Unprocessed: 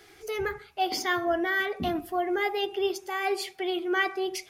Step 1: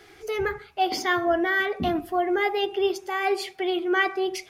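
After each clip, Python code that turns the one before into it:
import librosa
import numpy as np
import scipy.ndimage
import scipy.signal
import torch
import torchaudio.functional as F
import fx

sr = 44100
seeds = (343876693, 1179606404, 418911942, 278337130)

y = fx.high_shelf(x, sr, hz=5200.0, db=-7.0)
y = F.gain(torch.from_numpy(y), 4.0).numpy()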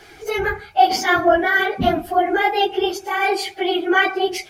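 y = fx.phase_scramble(x, sr, seeds[0], window_ms=50)
y = y + 0.32 * np.pad(y, (int(1.3 * sr / 1000.0), 0))[:len(y)]
y = F.gain(torch.from_numpy(y), 7.0).numpy()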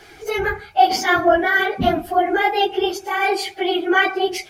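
y = x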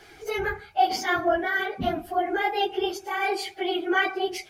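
y = fx.rider(x, sr, range_db=4, speed_s=2.0)
y = F.gain(torch.from_numpy(y), -8.0).numpy()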